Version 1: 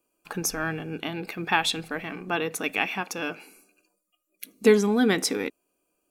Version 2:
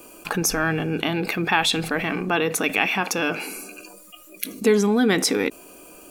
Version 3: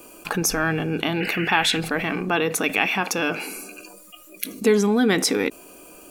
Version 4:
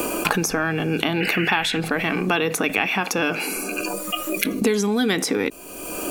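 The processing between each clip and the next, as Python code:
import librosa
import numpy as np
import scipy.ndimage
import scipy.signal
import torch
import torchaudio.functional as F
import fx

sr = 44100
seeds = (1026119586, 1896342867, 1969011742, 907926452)

y1 = fx.env_flatten(x, sr, amount_pct=50)
y1 = y1 * librosa.db_to_amplitude(-1.0)
y2 = fx.spec_paint(y1, sr, seeds[0], shape='noise', start_s=1.2, length_s=0.58, low_hz=1400.0, high_hz=3000.0, level_db=-31.0)
y3 = fx.band_squash(y2, sr, depth_pct=100)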